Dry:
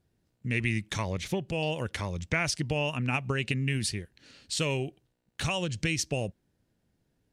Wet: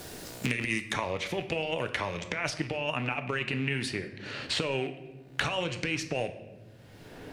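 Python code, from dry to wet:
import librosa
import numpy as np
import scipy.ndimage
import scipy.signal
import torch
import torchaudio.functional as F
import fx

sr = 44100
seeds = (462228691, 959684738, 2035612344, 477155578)

y = fx.rattle_buzz(x, sr, strikes_db=-34.0, level_db=-36.0)
y = fx.bass_treble(y, sr, bass_db=-14, treble_db=fx.steps((0.0, 5.0), (0.92, -13.0)))
y = fx.over_compress(y, sr, threshold_db=-34.0, ratio=-0.5)
y = fx.room_shoebox(y, sr, seeds[0], volume_m3=160.0, walls='mixed', distance_m=0.36)
y = fx.band_squash(y, sr, depth_pct=100)
y = y * 10.0 ** (3.5 / 20.0)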